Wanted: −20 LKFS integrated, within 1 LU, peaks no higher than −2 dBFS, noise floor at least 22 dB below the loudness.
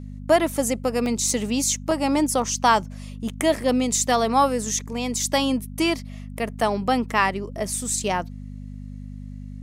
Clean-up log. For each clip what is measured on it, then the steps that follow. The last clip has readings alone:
number of dropouts 2; longest dropout 1.4 ms; mains hum 50 Hz; hum harmonics up to 250 Hz; level of the hum −33 dBFS; integrated loudness −22.5 LKFS; sample peak −5.5 dBFS; target loudness −20.0 LKFS
→ repair the gap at 0:01.06/0:01.91, 1.4 ms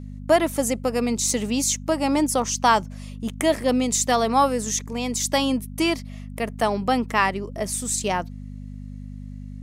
number of dropouts 0; mains hum 50 Hz; hum harmonics up to 250 Hz; level of the hum −33 dBFS
→ hum removal 50 Hz, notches 5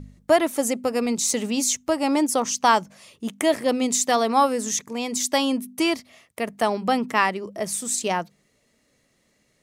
mains hum none found; integrated loudness −23.0 LKFS; sample peak −6.0 dBFS; target loudness −20.0 LKFS
→ level +3 dB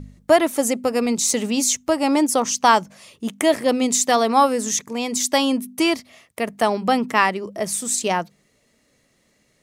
integrated loudness −20.0 LKFS; sample peak −3.0 dBFS; background noise floor −64 dBFS

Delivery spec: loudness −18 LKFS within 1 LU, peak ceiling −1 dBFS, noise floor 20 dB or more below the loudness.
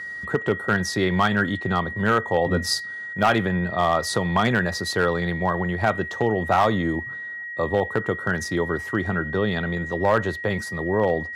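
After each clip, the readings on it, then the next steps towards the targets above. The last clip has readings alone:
share of clipped samples 0.3%; peaks flattened at −11.0 dBFS; interfering tone 1,900 Hz; level of the tone −31 dBFS; integrated loudness −23.0 LKFS; sample peak −11.0 dBFS; target loudness −18.0 LKFS
→ clipped peaks rebuilt −11 dBFS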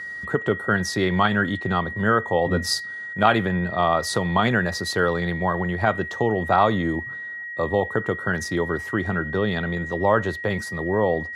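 share of clipped samples 0.0%; interfering tone 1,900 Hz; level of the tone −31 dBFS
→ notch filter 1,900 Hz, Q 30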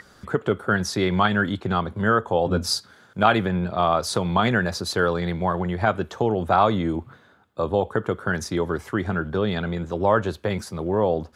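interfering tone none found; integrated loudness −23.5 LKFS; sample peak −2.0 dBFS; target loudness −18.0 LKFS
→ level +5.5 dB
brickwall limiter −1 dBFS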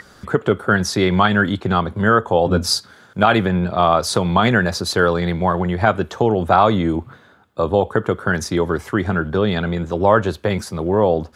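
integrated loudness −18.0 LKFS; sample peak −1.0 dBFS; background noise floor −49 dBFS

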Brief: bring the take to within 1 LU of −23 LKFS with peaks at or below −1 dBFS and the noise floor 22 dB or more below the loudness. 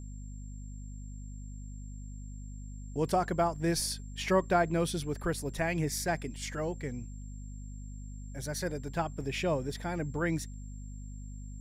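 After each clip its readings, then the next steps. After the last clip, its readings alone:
mains hum 50 Hz; hum harmonics up to 250 Hz; level of the hum −40 dBFS; interfering tone 7,400 Hz; level of the tone −58 dBFS; integrated loudness −32.5 LKFS; sample peak −14.5 dBFS; target loudness −23.0 LKFS
→ mains-hum notches 50/100/150/200/250 Hz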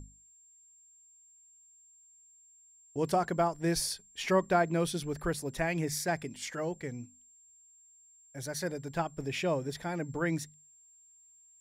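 mains hum none found; interfering tone 7,400 Hz; level of the tone −58 dBFS
→ notch filter 7,400 Hz, Q 30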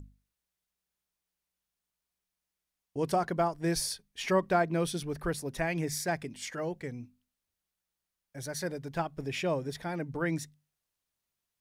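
interfering tone none found; integrated loudness −32.5 LKFS; sample peak −15.0 dBFS; target loudness −23.0 LKFS
→ level +9.5 dB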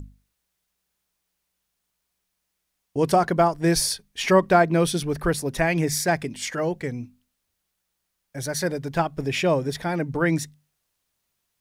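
integrated loudness −23.0 LKFS; sample peak −5.5 dBFS; background noise floor −78 dBFS

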